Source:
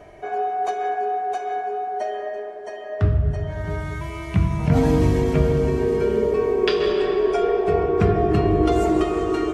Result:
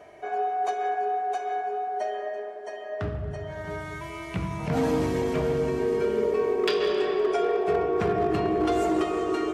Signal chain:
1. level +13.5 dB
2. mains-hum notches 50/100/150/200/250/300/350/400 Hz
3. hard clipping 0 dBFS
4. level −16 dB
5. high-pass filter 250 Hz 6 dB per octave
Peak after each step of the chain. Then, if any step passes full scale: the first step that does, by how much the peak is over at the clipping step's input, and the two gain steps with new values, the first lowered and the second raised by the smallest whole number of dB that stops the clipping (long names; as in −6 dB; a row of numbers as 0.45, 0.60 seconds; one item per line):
+8.0, +7.5, 0.0, −16.0, −13.5 dBFS
step 1, 7.5 dB
step 1 +5.5 dB, step 4 −8 dB